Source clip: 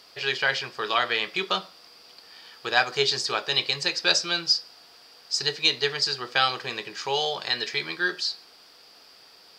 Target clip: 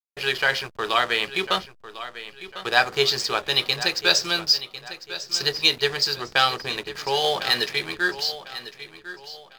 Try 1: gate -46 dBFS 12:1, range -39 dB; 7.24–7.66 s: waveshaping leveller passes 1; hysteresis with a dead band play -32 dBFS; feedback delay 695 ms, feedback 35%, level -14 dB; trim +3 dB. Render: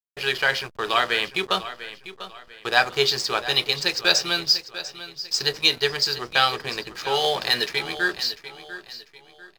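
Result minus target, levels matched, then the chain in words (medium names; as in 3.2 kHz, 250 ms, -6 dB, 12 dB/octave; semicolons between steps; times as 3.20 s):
echo 355 ms early
gate -46 dBFS 12:1, range -39 dB; 7.24–7.66 s: waveshaping leveller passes 1; hysteresis with a dead band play -32 dBFS; feedback delay 1050 ms, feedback 35%, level -14 dB; trim +3 dB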